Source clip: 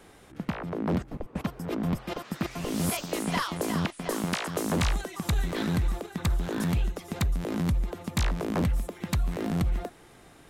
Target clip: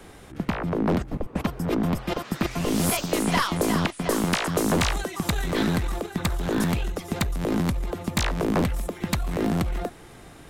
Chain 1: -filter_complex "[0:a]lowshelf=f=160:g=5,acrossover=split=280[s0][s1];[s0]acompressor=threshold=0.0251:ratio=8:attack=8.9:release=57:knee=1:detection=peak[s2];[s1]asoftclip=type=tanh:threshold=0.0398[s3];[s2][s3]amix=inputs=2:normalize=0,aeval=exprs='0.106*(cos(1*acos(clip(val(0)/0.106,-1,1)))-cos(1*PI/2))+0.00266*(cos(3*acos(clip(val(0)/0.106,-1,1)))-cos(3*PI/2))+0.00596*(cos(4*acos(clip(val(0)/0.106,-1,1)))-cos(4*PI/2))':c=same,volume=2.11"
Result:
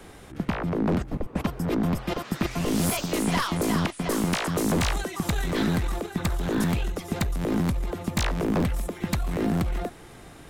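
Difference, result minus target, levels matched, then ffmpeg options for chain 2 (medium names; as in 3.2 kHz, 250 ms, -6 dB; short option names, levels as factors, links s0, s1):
saturation: distortion +16 dB
-filter_complex "[0:a]lowshelf=f=160:g=5,acrossover=split=280[s0][s1];[s0]acompressor=threshold=0.0251:ratio=8:attack=8.9:release=57:knee=1:detection=peak[s2];[s1]asoftclip=type=tanh:threshold=0.15[s3];[s2][s3]amix=inputs=2:normalize=0,aeval=exprs='0.106*(cos(1*acos(clip(val(0)/0.106,-1,1)))-cos(1*PI/2))+0.00266*(cos(3*acos(clip(val(0)/0.106,-1,1)))-cos(3*PI/2))+0.00596*(cos(4*acos(clip(val(0)/0.106,-1,1)))-cos(4*PI/2))':c=same,volume=2.11"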